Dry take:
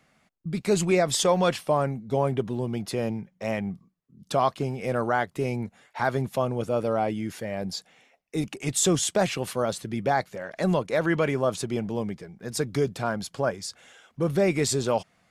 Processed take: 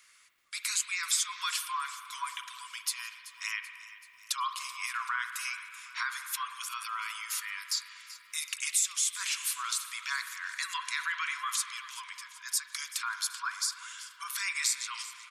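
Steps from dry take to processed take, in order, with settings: Chebyshev high-pass 980 Hz, order 10; spectral gate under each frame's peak -30 dB strong; tilt EQ +4.5 dB/octave; compression 3:1, threshold -31 dBFS, peak gain reduction 17 dB; crackle 580 per s -65 dBFS; feedback delay 383 ms, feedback 56%, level -16.5 dB; spring tank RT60 2.1 s, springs 47 ms, chirp 30 ms, DRR 7.5 dB

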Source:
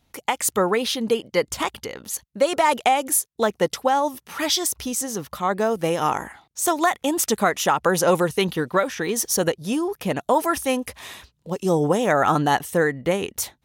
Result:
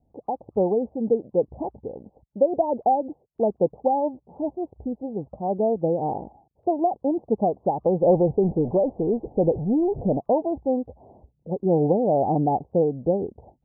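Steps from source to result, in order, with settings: 8.02–10.18 s: jump at every zero crossing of -25 dBFS; steep low-pass 820 Hz 72 dB/octave; WMA 32 kbps 22.05 kHz

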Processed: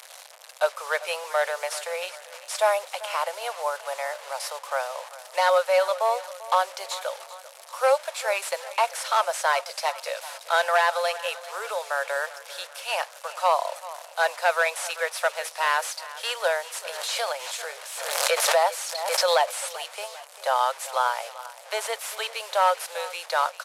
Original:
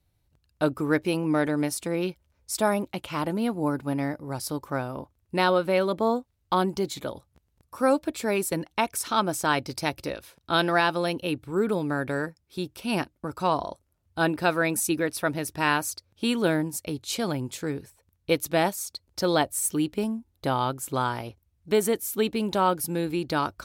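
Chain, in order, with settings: one-bit delta coder 64 kbps, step -37.5 dBFS; steep high-pass 520 Hz 72 dB/octave; feedback delay 392 ms, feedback 50%, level -17 dB; 16.86–19.61 s: swell ahead of each attack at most 41 dB/s; trim +4.5 dB

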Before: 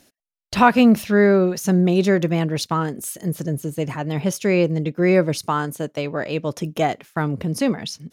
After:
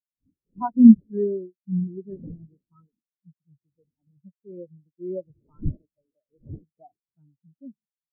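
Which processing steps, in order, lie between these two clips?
wind noise 380 Hz -23 dBFS; spectral contrast expander 4:1; trim -1 dB

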